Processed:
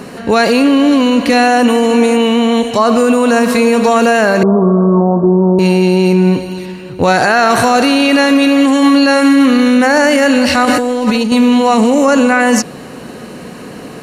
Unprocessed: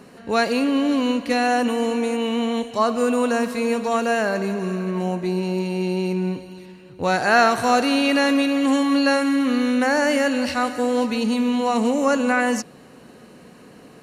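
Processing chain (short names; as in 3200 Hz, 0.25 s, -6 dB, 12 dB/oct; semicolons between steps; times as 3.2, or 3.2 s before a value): 4.43–5.59 steep low-pass 1300 Hz 72 dB/oct; 10.65–11.32 negative-ratio compressor -29 dBFS, ratio -1; maximiser +17.5 dB; gain -1 dB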